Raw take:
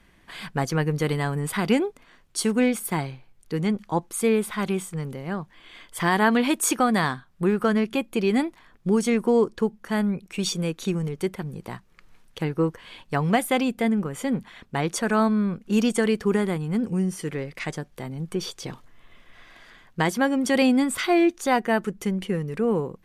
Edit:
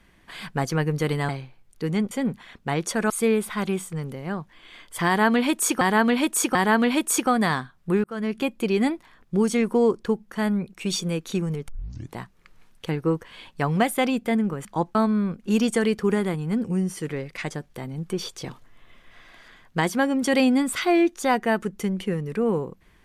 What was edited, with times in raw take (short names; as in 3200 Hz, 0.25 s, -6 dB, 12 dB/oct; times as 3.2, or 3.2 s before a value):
1.29–2.99 cut
3.81–4.11 swap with 14.18–15.17
6.08–6.82 loop, 3 plays
7.57–7.93 fade in
11.21 tape start 0.49 s